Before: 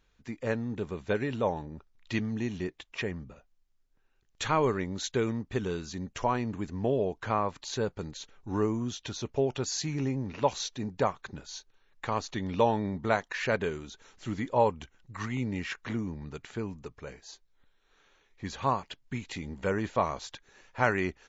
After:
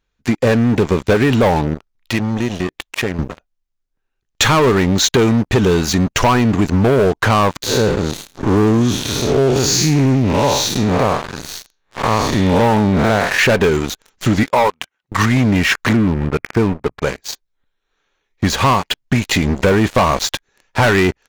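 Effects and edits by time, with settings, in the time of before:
1.74–3.19 s: compression 2:1, threshold -48 dBFS
7.62–13.39 s: spectral blur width 190 ms
14.43–15.12 s: band-pass filter 1.7 kHz, Q 0.56
15.93–17.02 s: elliptic low-pass 2.4 kHz
whole clip: waveshaping leveller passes 5; compression, threshold -17 dBFS; trim +6.5 dB

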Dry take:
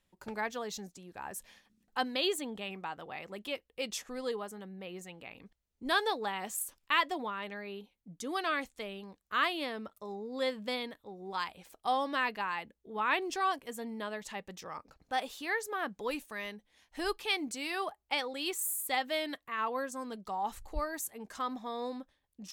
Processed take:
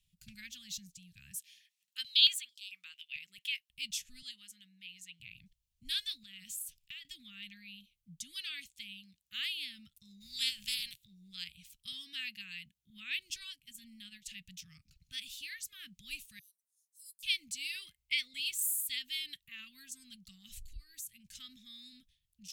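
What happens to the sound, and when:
1.38–3.70 s: step-sequenced high-pass 4.5 Hz 480–5000 Hz
4.22–5.20 s: frequency weighting A
6.23–7.05 s: compression 5:1, threshold -39 dBFS
8.40–9.39 s: high-pass 160 Hz 6 dB/octave
10.20–11.04 s: spectral peaks clipped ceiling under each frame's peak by 27 dB
11.92–12.90 s: high-pass 110 Hz
13.40–14.26 s: transient shaper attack -6 dB, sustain -10 dB
16.39–17.23 s: inverse Chebyshev high-pass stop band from 2.4 kHz, stop band 60 dB
17.75–18.40 s: small resonant body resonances 500/2100 Hz, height 16 dB, ringing for 25 ms
20.48–21.37 s: compression, threshold -41 dBFS
whole clip: elliptic band-stop 150–2700 Hz, stop band 60 dB; trim +2 dB

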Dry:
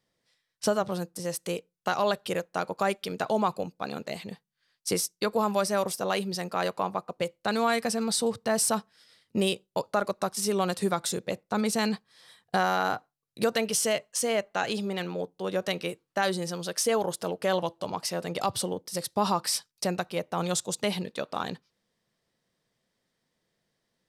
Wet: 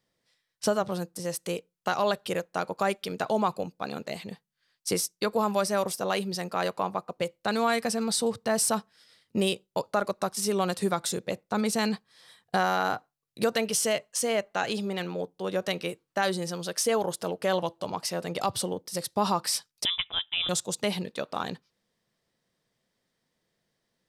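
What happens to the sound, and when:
19.85–20.49 s: frequency inversion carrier 3.7 kHz

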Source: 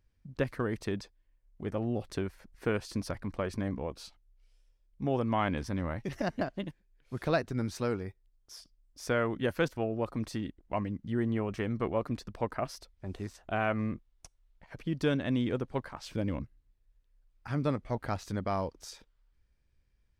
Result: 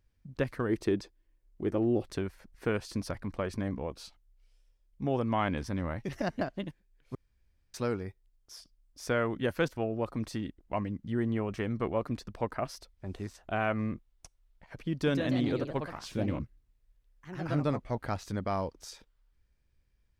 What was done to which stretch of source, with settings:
0.69–2.06 s: peaking EQ 340 Hz +10.5 dB 0.58 oct
7.15–7.74 s: room tone
14.92–18.01 s: ever faster or slower copies 150 ms, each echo +2 st, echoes 2, each echo -6 dB

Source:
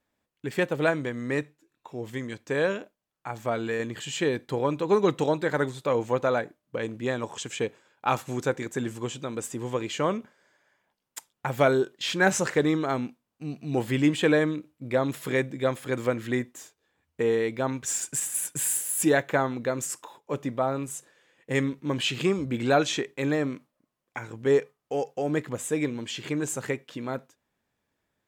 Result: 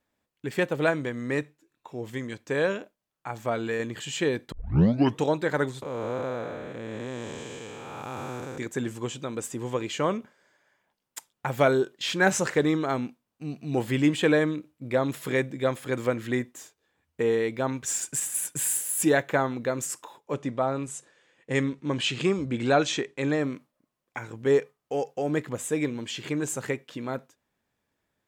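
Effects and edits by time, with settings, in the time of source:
4.52 s: tape start 0.70 s
5.82–8.58 s: spectral blur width 495 ms
20.34–23.41 s: low-pass 9.5 kHz 24 dB/octave

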